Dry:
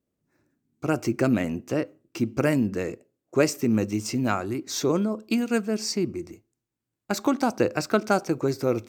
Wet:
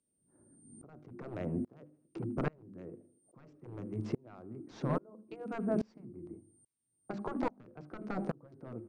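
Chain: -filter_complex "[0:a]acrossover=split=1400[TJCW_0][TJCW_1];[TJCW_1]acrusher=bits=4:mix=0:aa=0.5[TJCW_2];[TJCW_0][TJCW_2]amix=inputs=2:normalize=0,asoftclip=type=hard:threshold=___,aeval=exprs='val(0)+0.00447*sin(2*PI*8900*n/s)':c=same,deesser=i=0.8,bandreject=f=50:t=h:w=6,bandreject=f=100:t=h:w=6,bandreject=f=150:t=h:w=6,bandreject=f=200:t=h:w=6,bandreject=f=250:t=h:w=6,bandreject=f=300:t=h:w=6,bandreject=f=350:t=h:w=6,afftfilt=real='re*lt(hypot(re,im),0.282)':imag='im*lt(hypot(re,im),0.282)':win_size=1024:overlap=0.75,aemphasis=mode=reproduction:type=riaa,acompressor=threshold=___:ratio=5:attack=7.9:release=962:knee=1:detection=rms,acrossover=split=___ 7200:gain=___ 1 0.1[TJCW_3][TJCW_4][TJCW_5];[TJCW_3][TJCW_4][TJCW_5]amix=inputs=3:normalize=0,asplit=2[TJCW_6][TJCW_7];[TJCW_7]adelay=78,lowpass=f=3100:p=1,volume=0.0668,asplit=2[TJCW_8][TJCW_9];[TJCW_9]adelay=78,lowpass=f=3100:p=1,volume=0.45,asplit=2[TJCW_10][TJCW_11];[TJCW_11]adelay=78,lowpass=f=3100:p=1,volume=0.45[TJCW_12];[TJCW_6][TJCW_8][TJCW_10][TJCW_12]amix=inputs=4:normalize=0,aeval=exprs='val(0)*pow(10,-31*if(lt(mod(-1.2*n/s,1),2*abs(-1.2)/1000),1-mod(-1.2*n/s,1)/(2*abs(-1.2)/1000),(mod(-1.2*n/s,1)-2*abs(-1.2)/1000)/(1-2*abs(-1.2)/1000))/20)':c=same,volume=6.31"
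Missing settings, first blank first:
0.158, 0.0126, 150, 0.178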